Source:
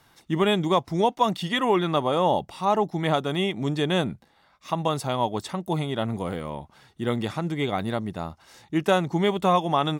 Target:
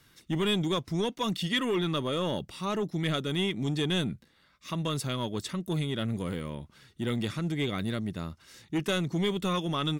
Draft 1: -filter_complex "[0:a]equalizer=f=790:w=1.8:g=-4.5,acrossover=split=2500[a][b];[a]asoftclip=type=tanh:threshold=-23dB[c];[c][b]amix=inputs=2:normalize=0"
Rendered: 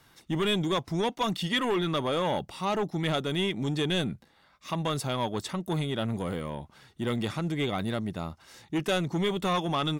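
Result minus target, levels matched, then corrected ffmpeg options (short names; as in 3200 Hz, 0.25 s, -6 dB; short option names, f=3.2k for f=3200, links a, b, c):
1000 Hz band +4.0 dB
-filter_complex "[0:a]equalizer=f=790:w=1.8:g=-16.5,acrossover=split=2500[a][b];[a]asoftclip=type=tanh:threshold=-23dB[c];[c][b]amix=inputs=2:normalize=0"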